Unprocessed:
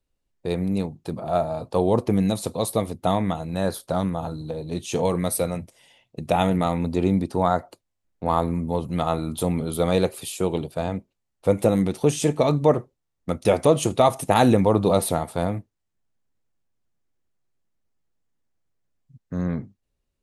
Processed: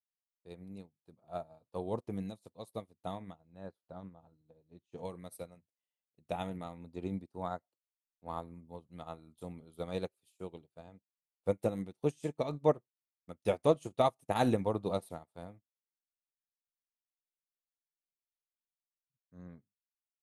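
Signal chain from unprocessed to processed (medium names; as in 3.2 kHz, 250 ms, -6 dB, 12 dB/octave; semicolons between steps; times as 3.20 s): 3.35–4.98 s: low-pass 1.8 kHz 6 dB/octave; upward expansion 2.5:1, over -37 dBFS; trim -8 dB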